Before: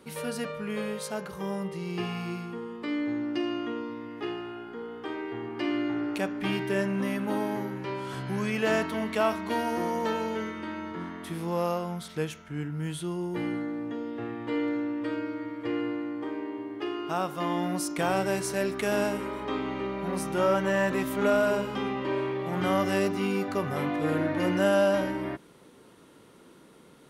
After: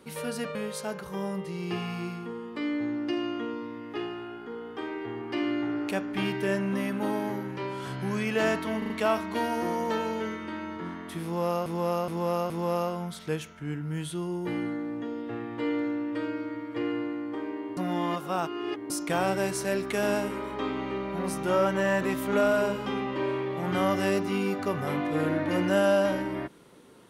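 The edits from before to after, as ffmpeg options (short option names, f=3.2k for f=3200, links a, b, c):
-filter_complex "[0:a]asplit=10[a][b][c][d][e][f][g][h][i][j];[a]atrim=end=0.552[k];[b]atrim=start=0.818:end=9.092[l];[c]atrim=start=9.048:end=9.092[m];[d]atrim=start=9.048:end=9.092[n];[e]atrim=start=9.048:end=11.812[o];[f]atrim=start=11.388:end=11.812[p];[g]atrim=start=11.388:end=11.812[q];[h]atrim=start=11.388:end=16.662[r];[i]atrim=start=16.658:end=17.792,asetpts=PTS-STARTPTS,areverse[s];[j]atrim=start=17.788[t];[k][l]acrossfade=d=0.004:c1=hsin:c2=hsin[u];[u][m]acrossfade=d=0.004:c1=hsin:c2=hsin[v];[v][n]acrossfade=d=0.004:c1=hsin:c2=hsin[w];[w][o]acrossfade=d=0.004:c1=hsin:c2=hsin[x];[x][p]acrossfade=d=0.004:c1=hsin:c2=hsin[y];[y][q]acrossfade=d=0.004:c1=hsin:c2=hsin[z];[z][r]acrossfade=d=0.004:c1=hsin:c2=hsin[aa];[aa][s]acrossfade=d=0.004:c1=hsin:c2=hsin[ab];[ab][t]acrossfade=d=0.004:c1=hsin:c2=hsin"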